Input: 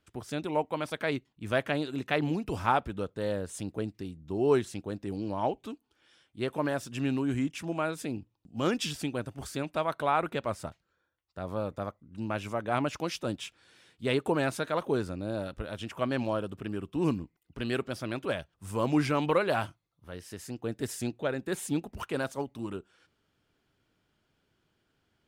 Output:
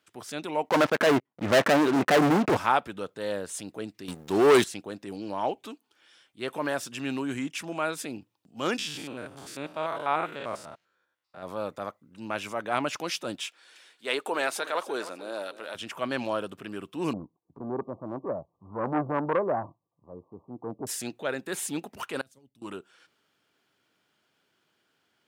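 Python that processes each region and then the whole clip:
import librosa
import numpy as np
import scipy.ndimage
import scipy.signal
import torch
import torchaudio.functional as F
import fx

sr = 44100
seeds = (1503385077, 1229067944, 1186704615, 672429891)

y = fx.chain(x, sr, fx.lowpass(hz=1400.0, slope=12),
    fx.leveller(passes=5), at=(0.69, 2.57))
y = fx.chain(y, sr, fx.high_shelf(hz=3800.0, db=8.0),
    fx.leveller(passes=3), at=(4.08, 4.64))
y = fx.chain(y, sr, fx.spec_steps(hold_ms=100),
    fx.high_shelf(hz=5900.0, db=-5.5), at=(8.78, 11.43))
y = fx.chain(y, sr, fx.highpass(hz=390.0, slope=12),
    fx.echo_feedback(ms=296, feedback_pct=32, wet_db=-16), at=(13.46, 15.75))
y = fx.chain(y, sr, fx.brickwall_lowpass(high_hz=1200.0),
    fx.tilt_eq(slope=-1.5),
    fx.transformer_sat(knee_hz=670.0), at=(17.13, 20.87))
y = fx.chain(y, sr, fx.tone_stack(knobs='10-0-1'),
    fx.over_compress(threshold_db=-55.0, ratio=-0.5), at=(22.21, 22.62))
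y = fx.transient(y, sr, attack_db=-4, sustain_db=1)
y = scipy.signal.sosfilt(scipy.signal.butter(2, 150.0, 'highpass', fs=sr, output='sos'), y)
y = fx.low_shelf(y, sr, hz=460.0, db=-9.0)
y = F.gain(torch.from_numpy(y), 5.5).numpy()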